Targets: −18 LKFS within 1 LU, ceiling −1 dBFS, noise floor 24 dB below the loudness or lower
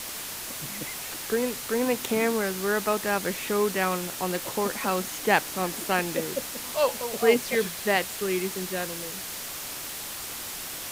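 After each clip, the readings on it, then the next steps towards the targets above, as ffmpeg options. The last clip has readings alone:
background noise floor −37 dBFS; target noise floor −52 dBFS; integrated loudness −27.5 LKFS; sample peak −6.5 dBFS; target loudness −18.0 LKFS
→ -af "afftdn=noise_reduction=15:noise_floor=-37"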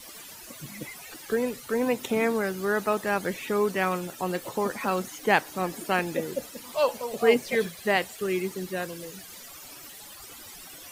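background noise floor −45 dBFS; target noise floor −52 dBFS
→ -af "afftdn=noise_reduction=7:noise_floor=-45"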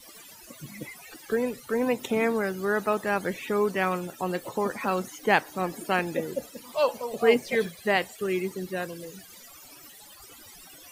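background noise floor −49 dBFS; target noise floor −52 dBFS
→ -af "afftdn=noise_reduction=6:noise_floor=-49"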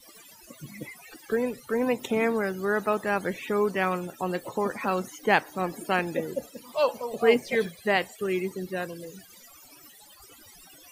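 background noise floor −52 dBFS; integrated loudness −27.5 LKFS; sample peak −7.0 dBFS; target loudness −18.0 LKFS
→ -af "volume=9.5dB,alimiter=limit=-1dB:level=0:latency=1"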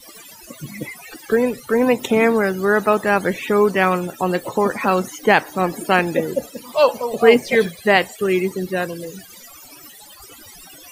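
integrated loudness −18.5 LKFS; sample peak −1.0 dBFS; background noise floor −43 dBFS

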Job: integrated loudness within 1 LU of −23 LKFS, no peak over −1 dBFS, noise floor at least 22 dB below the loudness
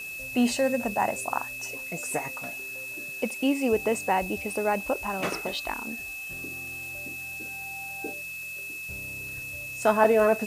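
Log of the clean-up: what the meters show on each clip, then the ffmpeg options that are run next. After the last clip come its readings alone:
interfering tone 2,600 Hz; level of the tone −35 dBFS; background noise floor −37 dBFS; target noise floor −51 dBFS; integrated loudness −28.5 LKFS; sample peak −6.5 dBFS; target loudness −23.0 LKFS
→ -af "bandreject=frequency=2600:width=30"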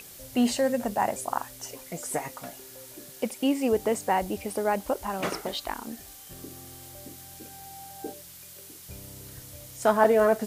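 interfering tone none found; background noise floor −47 dBFS; target noise floor −50 dBFS
→ -af "afftdn=noise_reduction=6:noise_floor=-47"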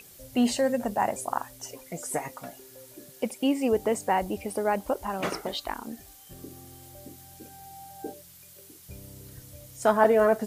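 background noise floor −51 dBFS; integrated loudness −27.5 LKFS; sample peak −7.0 dBFS; target loudness −23.0 LKFS
→ -af "volume=4.5dB"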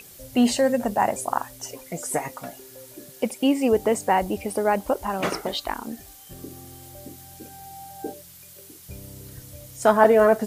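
integrated loudness −23.0 LKFS; sample peak −2.5 dBFS; background noise floor −47 dBFS

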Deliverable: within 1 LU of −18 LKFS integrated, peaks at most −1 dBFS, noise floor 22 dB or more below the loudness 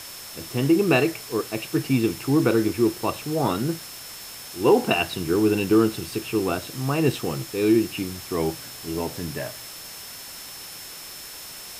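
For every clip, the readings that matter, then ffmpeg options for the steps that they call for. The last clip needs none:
interfering tone 5,300 Hz; level of the tone −43 dBFS; background noise floor −39 dBFS; target noise floor −46 dBFS; integrated loudness −23.5 LKFS; sample peak −7.0 dBFS; target loudness −18.0 LKFS
→ -af "bandreject=frequency=5300:width=30"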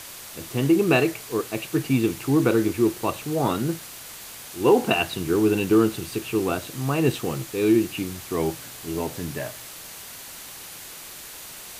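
interfering tone none found; background noise floor −40 dBFS; target noise floor −46 dBFS
→ -af "afftdn=noise_reduction=6:noise_floor=-40"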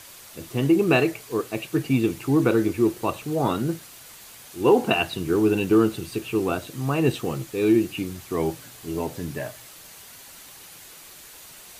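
background noise floor −45 dBFS; target noise floor −46 dBFS
→ -af "afftdn=noise_reduction=6:noise_floor=-45"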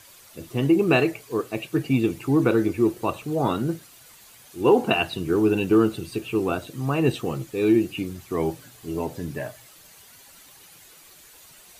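background noise floor −50 dBFS; integrated loudness −23.5 LKFS; sample peak −7.0 dBFS; target loudness −18.0 LKFS
→ -af "volume=5.5dB"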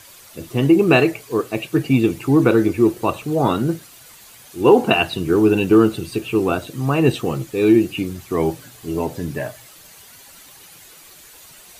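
integrated loudness −18.0 LKFS; sample peak −1.5 dBFS; background noise floor −45 dBFS

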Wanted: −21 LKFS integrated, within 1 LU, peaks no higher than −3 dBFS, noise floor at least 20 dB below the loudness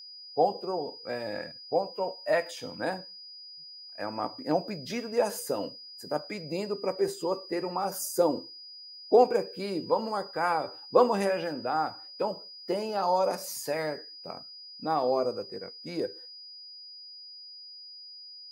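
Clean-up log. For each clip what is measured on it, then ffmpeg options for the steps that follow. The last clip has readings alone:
interfering tone 4,900 Hz; level of the tone −44 dBFS; integrated loudness −30.0 LKFS; sample peak −8.5 dBFS; target loudness −21.0 LKFS
→ -af "bandreject=frequency=4900:width=30"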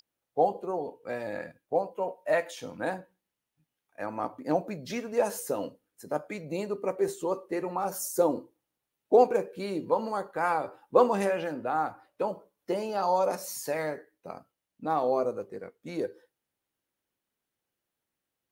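interfering tone none found; integrated loudness −30.0 LKFS; sample peak −8.5 dBFS; target loudness −21.0 LKFS
→ -af "volume=9dB,alimiter=limit=-3dB:level=0:latency=1"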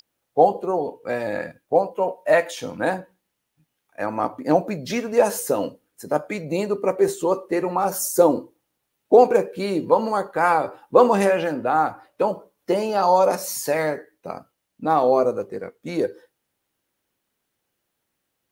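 integrated loudness −21.5 LKFS; sample peak −3.0 dBFS; background noise floor −78 dBFS

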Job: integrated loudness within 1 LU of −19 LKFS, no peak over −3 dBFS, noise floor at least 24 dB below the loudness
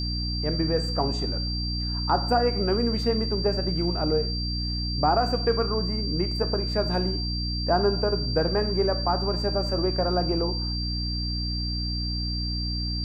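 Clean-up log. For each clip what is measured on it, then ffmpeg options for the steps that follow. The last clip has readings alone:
mains hum 60 Hz; hum harmonics up to 300 Hz; level of the hum −27 dBFS; interfering tone 4,700 Hz; level of the tone −31 dBFS; integrated loudness −25.5 LKFS; sample peak −10.0 dBFS; target loudness −19.0 LKFS
→ -af "bandreject=frequency=60:width_type=h:width=6,bandreject=frequency=120:width_type=h:width=6,bandreject=frequency=180:width_type=h:width=6,bandreject=frequency=240:width_type=h:width=6,bandreject=frequency=300:width_type=h:width=6"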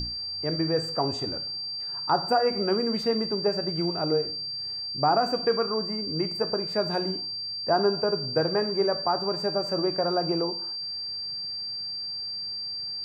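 mains hum none found; interfering tone 4,700 Hz; level of the tone −31 dBFS
→ -af "bandreject=frequency=4700:width=30"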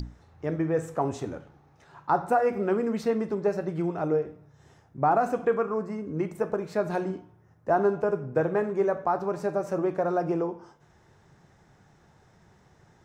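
interfering tone none found; integrated loudness −28.0 LKFS; sample peak −12.5 dBFS; target loudness −19.0 LKFS
→ -af "volume=9dB"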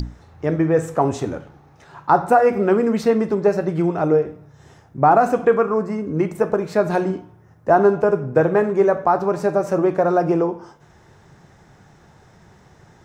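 integrated loudness −19.0 LKFS; sample peak −3.5 dBFS; background noise floor −51 dBFS

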